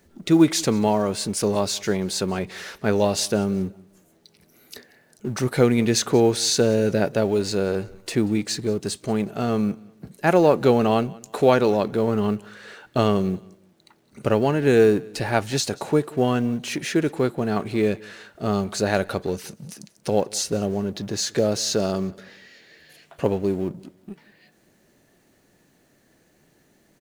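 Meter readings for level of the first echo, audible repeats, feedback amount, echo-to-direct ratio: -23.5 dB, 2, 31%, -23.0 dB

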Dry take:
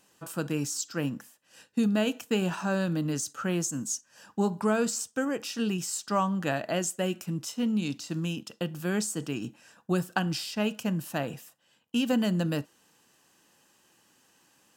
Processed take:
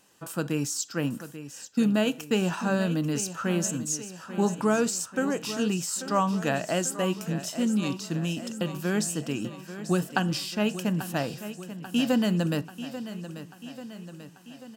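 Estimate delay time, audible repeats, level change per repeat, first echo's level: 839 ms, 5, -4.5 dB, -12.5 dB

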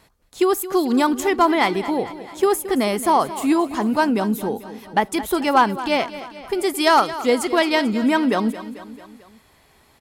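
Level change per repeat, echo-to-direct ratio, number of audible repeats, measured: -4.5 dB, -13.0 dB, 4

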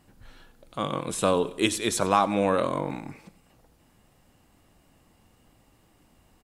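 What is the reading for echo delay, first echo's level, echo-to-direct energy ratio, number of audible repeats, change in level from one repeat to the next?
94 ms, -19.0 dB, -18.0 dB, 3, -6.5 dB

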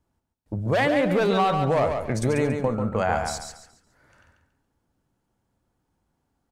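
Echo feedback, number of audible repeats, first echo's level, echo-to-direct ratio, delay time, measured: 30%, 3, -6.0 dB, -5.5 dB, 140 ms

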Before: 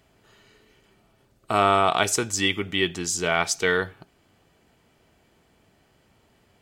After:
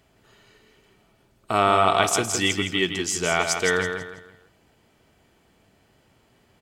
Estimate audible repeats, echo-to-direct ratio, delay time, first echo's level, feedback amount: 3, -6.0 dB, 164 ms, -6.5 dB, 33%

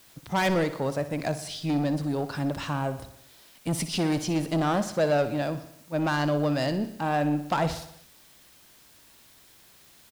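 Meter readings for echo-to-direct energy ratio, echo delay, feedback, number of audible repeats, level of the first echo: -11.0 dB, 61 ms, 59%, 5, -13.0 dB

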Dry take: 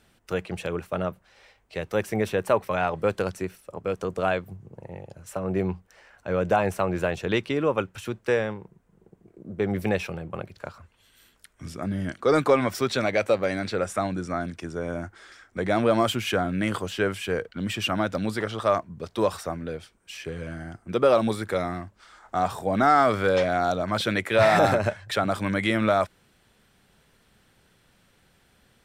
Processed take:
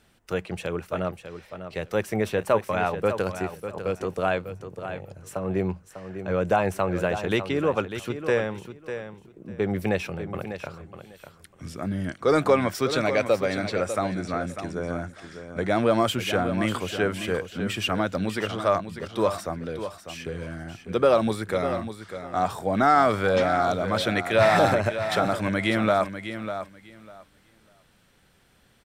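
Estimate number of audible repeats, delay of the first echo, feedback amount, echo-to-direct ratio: 2, 598 ms, 18%, -10.0 dB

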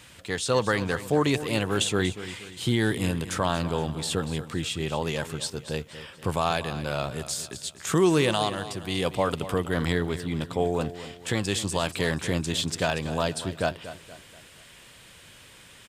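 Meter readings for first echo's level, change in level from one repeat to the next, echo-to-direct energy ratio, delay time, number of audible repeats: -13.5 dB, -7.5 dB, -12.5 dB, 237 ms, 3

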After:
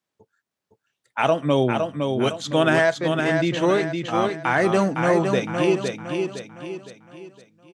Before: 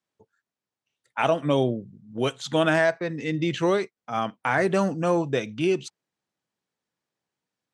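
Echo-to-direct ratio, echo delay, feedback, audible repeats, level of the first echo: -4.0 dB, 511 ms, 41%, 4, -5.0 dB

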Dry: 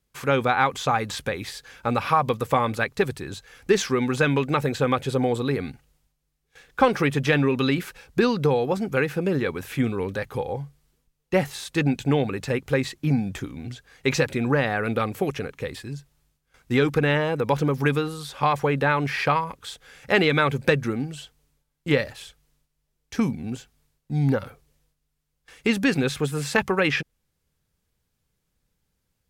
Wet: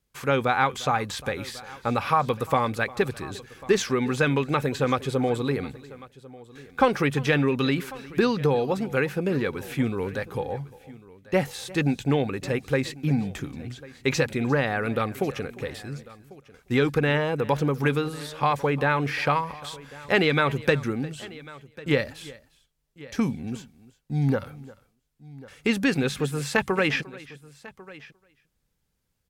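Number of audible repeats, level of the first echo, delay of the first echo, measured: 2, -20.5 dB, 351 ms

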